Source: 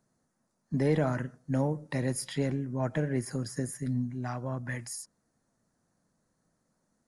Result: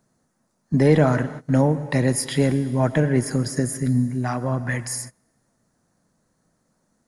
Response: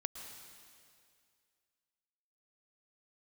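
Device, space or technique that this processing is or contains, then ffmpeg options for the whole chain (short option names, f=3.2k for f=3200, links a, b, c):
keyed gated reverb: -filter_complex "[0:a]asplit=3[a][b][c];[1:a]atrim=start_sample=2205[d];[b][d]afir=irnorm=-1:irlink=0[e];[c]apad=whole_len=311866[f];[e][f]sidechaingate=range=-26dB:threshold=-48dB:ratio=16:detection=peak,volume=-4dB[g];[a][g]amix=inputs=2:normalize=0,volume=7dB"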